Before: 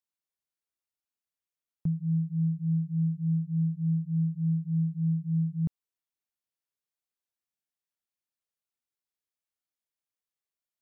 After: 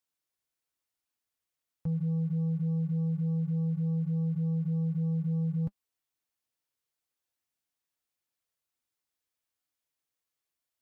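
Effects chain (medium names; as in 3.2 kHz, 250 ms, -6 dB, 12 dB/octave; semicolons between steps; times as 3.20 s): waveshaping leveller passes 1; peak limiter -33 dBFS, peak gain reduction 11 dB; comb of notches 200 Hz; trim +7.5 dB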